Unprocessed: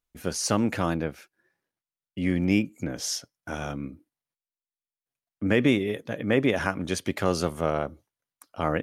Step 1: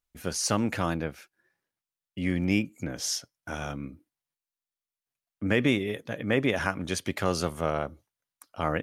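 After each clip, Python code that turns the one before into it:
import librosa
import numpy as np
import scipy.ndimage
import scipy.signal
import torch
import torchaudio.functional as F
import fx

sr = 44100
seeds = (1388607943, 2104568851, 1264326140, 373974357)

y = fx.peak_eq(x, sr, hz=330.0, db=-3.5, octaves=2.4)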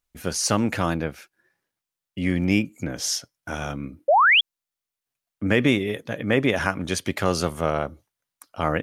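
y = fx.spec_paint(x, sr, seeds[0], shape='rise', start_s=4.08, length_s=0.33, low_hz=520.0, high_hz=3500.0, level_db=-20.0)
y = y * 10.0 ** (4.5 / 20.0)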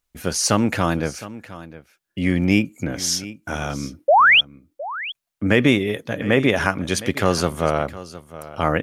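y = x + 10.0 ** (-16.5 / 20.0) * np.pad(x, (int(712 * sr / 1000.0), 0))[:len(x)]
y = y * 10.0 ** (3.5 / 20.0)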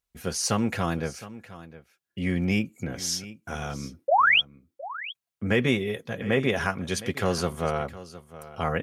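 y = fx.notch_comb(x, sr, f0_hz=300.0)
y = y * 10.0 ** (-5.5 / 20.0)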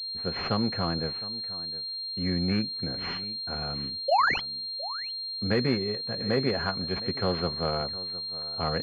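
y = fx.pwm(x, sr, carrier_hz=4200.0)
y = y * 10.0 ** (-2.0 / 20.0)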